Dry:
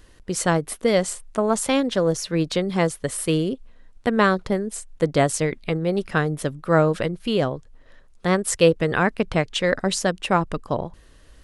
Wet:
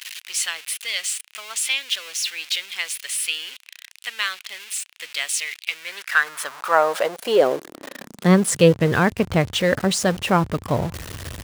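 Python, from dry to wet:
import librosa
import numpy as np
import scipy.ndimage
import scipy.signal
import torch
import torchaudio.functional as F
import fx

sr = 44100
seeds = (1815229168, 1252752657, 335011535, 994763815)

y = x + 0.5 * 10.0 ** (-27.0 / 20.0) * np.sign(x)
y = fx.filter_sweep_highpass(y, sr, from_hz=2600.0, to_hz=89.0, start_s=5.67, end_s=9.02, q=2.4)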